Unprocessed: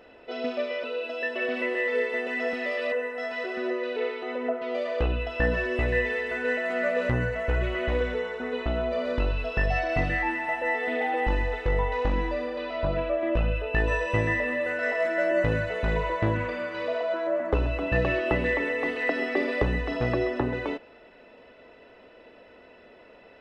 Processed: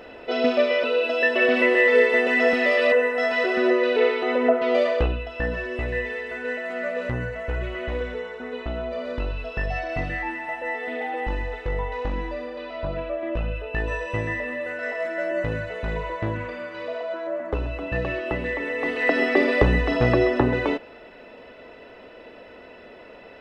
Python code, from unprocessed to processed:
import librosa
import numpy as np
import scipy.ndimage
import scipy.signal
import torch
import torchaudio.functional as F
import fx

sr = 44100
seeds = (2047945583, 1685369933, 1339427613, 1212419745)

y = fx.gain(x, sr, db=fx.line((4.83, 9.5), (5.23, -2.0), (18.56, -2.0), (19.18, 7.0)))